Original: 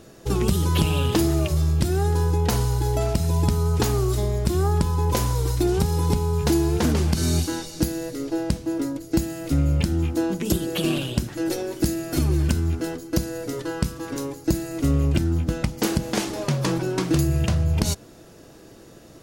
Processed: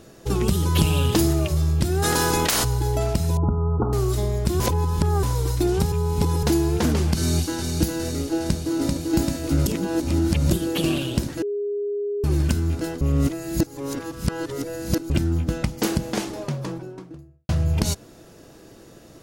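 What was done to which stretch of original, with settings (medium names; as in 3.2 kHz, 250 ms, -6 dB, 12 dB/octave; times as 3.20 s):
0.75–1.33 s: tone controls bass +2 dB, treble +4 dB
2.02–2.63 s: spectral peaks clipped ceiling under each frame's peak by 28 dB
3.37–3.93 s: Chebyshev low-pass 1.4 kHz, order 8
4.60–5.23 s: reverse
5.92–6.43 s: reverse
7.17–7.72 s: echo throw 410 ms, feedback 75%, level -5 dB
8.26–8.99 s: echo throw 390 ms, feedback 85%, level -2.5 dB
9.66–10.51 s: reverse
11.42–12.24 s: bleep 409 Hz -23 dBFS
13.01–15.10 s: reverse
15.81–17.49 s: studio fade out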